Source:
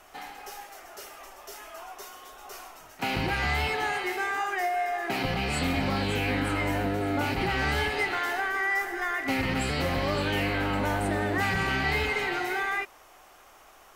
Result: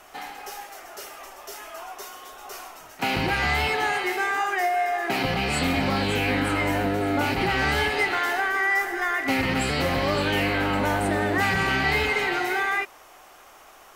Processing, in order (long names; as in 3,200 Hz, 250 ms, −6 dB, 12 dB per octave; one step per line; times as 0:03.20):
low-shelf EQ 97 Hz −6 dB
level +4.5 dB